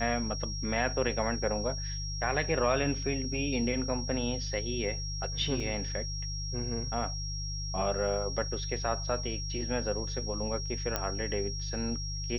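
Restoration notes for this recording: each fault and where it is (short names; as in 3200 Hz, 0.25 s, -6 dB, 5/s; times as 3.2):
hum 50 Hz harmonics 3 -37 dBFS
tone 5600 Hz -38 dBFS
5.6 gap 2.1 ms
10.96 pop -13 dBFS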